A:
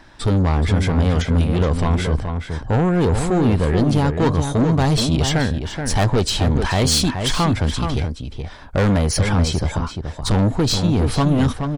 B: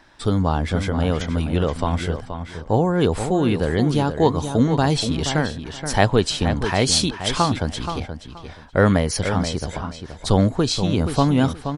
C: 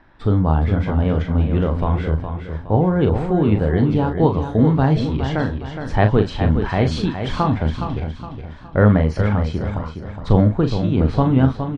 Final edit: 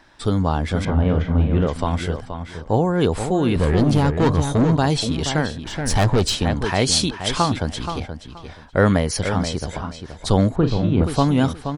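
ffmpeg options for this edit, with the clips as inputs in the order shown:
-filter_complex "[2:a]asplit=2[a][b];[0:a]asplit=2[c][d];[1:a]asplit=5[e][f][g][h][i];[e]atrim=end=0.852[j];[a]atrim=start=0.848:end=1.672[k];[f]atrim=start=1.668:end=3.562[l];[c]atrim=start=3.558:end=4.762[m];[g]atrim=start=4.758:end=5.672[n];[d]atrim=start=5.668:end=6.352[o];[h]atrim=start=6.348:end=10.562[p];[b]atrim=start=10.558:end=11.042[q];[i]atrim=start=11.038[r];[j][k]acrossfade=d=0.004:c1=hsin:c2=hsin[s];[s][l]acrossfade=d=0.004:c1=hsin:c2=hsin[t];[t][m]acrossfade=d=0.004:c1=hsin:c2=hsin[u];[u][n]acrossfade=d=0.004:c1=hsin:c2=hsin[v];[v][o]acrossfade=d=0.004:c1=hsin:c2=hsin[w];[w][p]acrossfade=d=0.004:c1=hsin:c2=hsin[x];[x][q]acrossfade=d=0.004:c1=hsin:c2=hsin[y];[y][r]acrossfade=d=0.004:c1=hsin:c2=hsin"

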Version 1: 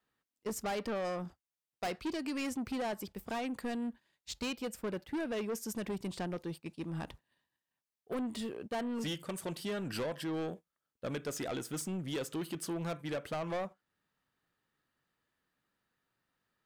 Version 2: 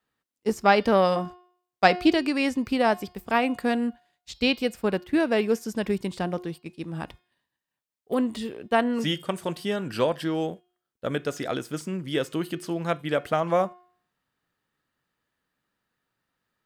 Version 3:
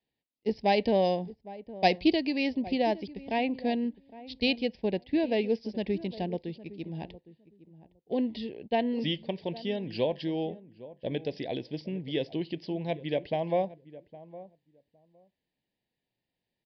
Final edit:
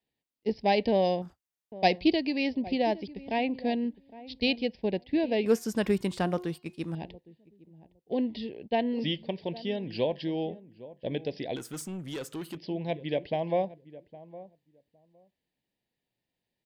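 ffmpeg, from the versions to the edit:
-filter_complex "[0:a]asplit=2[a][b];[2:a]asplit=4[c][d][e][f];[c]atrim=end=1.222[g];[a]atrim=start=1.218:end=1.722[h];[d]atrim=start=1.718:end=5.462[i];[1:a]atrim=start=5.458:end=6.952[j];[e]atrim=start=6.948:end=11.562[k];[b]atrim=start=11.558:end=12.572[l];[f]atrim=start=12.568[m];[g][h]acrossfade=d=0.004:c1=hsin:c2=hsin[n];[n][i]acrossfade=d=0.004:c1=hsin:c2=hsin[o];[o][j]acrossfade=d=0.004:c1=hsin:c2=hsin[p];[p][k]acrossfade=d=0.004:c1=hsin:c2=hsin[q];[q][l]acrossfade=d=0.004:c1=hsin:c2=hsin[r];[r][m]acrossfade=d=0.004:c1=hsin:c2=hsin"

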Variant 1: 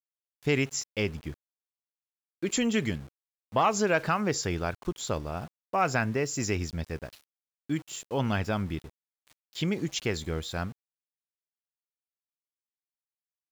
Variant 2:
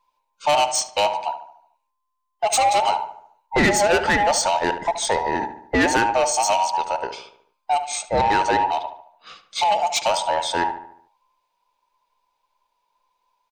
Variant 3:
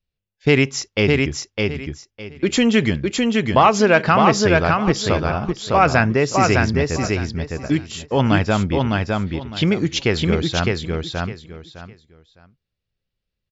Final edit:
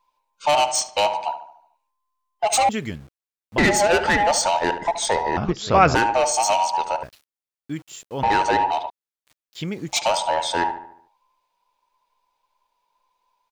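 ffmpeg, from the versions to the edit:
-filter_complex "[0:a]asplit=3[a][b][c];[1:a]asplit=5[d][e][f][g][h];[d]atrim=end=2.692[i];[a]atrim=start=2.688:end=3.582[j];[e]atrim=start=3.578:end=5.372[k];[2:a]atrim=start=5.368:end=5.952[l];[f]atrim=start=5.948:end=7.032[m];[b]atrim=start=7.028:end=8.232[n];[g]atrim=start=8.228:end=8.902[o];[c]atrim=start=8.898:end=9.932[p];[h]atrim=start=9.928[q];[i][j]acrossfade=d=0.004:c1=hsin:c2=hsin[r];[r][k]acrossfade=d=0.004:c1=hsin:c2=hsin[s];[s][l]acrossfade=d=0.004:c1=hsin:c2=hsin[t];[t][m]acrossfade=d=0.004:c1=hsin:c2=hsin[u];[u][n]acrossfade=d=0.004:c1=hsin:c2=hsin[v];[v][o]acrossfade=d=0.004:c1=hsin:c2=hsin[w];[w][p]acrossfade=d=0.004:c1=hsin:c2=hsin[x];[x][q]acrossfade=d=0.004:c1=hsin:c2=hsin"

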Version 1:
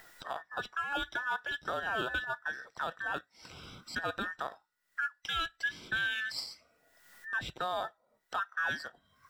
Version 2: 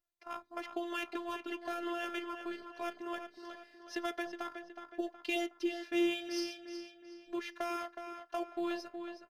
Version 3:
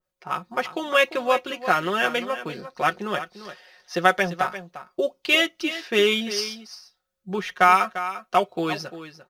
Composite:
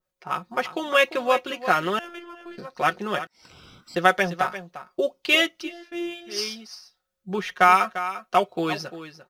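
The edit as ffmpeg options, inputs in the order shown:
-filter_complex "[1:a]asplit=2[a][b];[2:a]asplit=4[c][d][e][f];[c]atrim=end=1.992[g];[a]atrim=start=1.988:end=2.582[h];[d]atrim=start=2.578:end=3.272[i];[0:a]atrim=start=3.268:end=3.962[j];[e]atrim=start=3.958:end=5.73[k];[b]atrim=start=5.57:end=6.42[l];[f]atrim=start=6.26[m];[g][h]acrossfade=d=0.004:c1=hsin:c2=hsin[n];[n][i]acrossfade=d=0.004:c1=hsin:c2=hsin[o];[o][j]acrossfade=d=0.004:c1=hsin:c2=hsin[p];[p][k]acrossfade=d=0.004:c1=hsin:c2=hsin[q];[q][l]acrossfade=d=0.16:c1=tri:c2=tri[r];[r][m]acrossfade=d=0.16:c1=tri:c2=tri"

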